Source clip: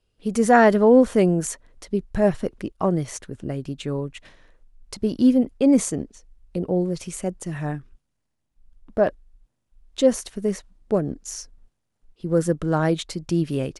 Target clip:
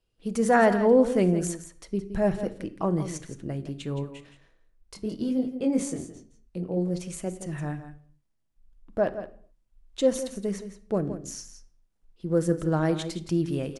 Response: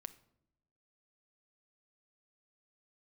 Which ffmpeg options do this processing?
-filter_complex "[0:a]asplit=3[a][b][c];[a]afade=t=out:st=4.03:d=0.02[d];[b]flanger=delay=19.5:depth=4.6:speed=1.1,afade=t=in:st=4.03:d=0.02,afade=t=out:st=6.76:d=0.02[e];[c]afade=t=in:st=6.76:d=0.02[f];[d][e][f]amix=inputs=3:normalize=0,aecho=1:1:168:0.266[g];[1:a]atrim=start_sample=2205,afade=t=out:st=0.32:d=0.01,atrim=end_sample=14553[h];[g][h]afir=irnorm=-1:irlink=0"

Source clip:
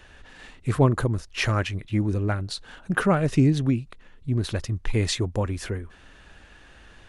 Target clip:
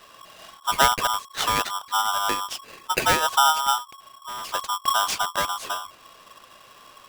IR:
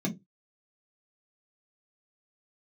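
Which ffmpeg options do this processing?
-filter_complex "[0:a]asettb=1/sr,asplit=3[a][b][c];[a]atrim=end=3.784[d];[b]atrim=start=3.78:end=4.54,asetpts=PTS-STARTPTS,afade=t=in:d=0.004:c=qsin,afade=t=out:st=0.756:d=0.004:c=qsin,volume=32.5dB,asoftclip=hard,volume=-32.5dB[e];[c]atrim=start=4.536[f];[d][e]acrossfade=d=0.004:c1=hsin:c2=qsin[g];[g][f]acrossfade=d=0.004:c1=qsin:c2=hsin,aeval=exprs='val(0)*sgn(sin(2*PI*1100*n/s))':c=same"

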